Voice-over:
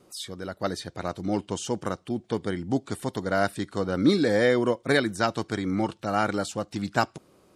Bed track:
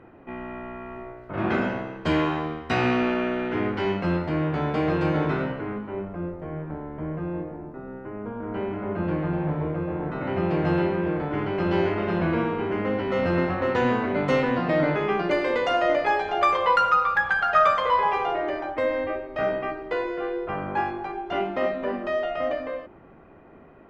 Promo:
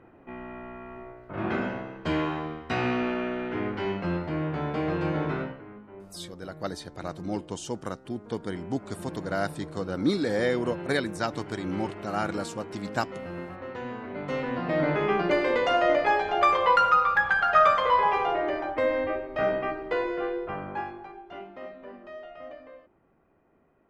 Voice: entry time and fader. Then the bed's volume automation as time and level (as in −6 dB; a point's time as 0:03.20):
6.00 s, −4.5 dB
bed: 0:05.41 −4.5 dB
0:05.63 −14 dB
0:13.91 −14 dB
0:15.04 −0.5 dB
0:20.23 −0.5 dB
0:21.48 −16 dB